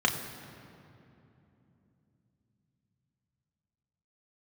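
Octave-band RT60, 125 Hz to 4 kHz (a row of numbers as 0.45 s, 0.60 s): 5.4 s, 4.8 s, 3.3 s, 2.7 s, 2.3 s, 1.7 s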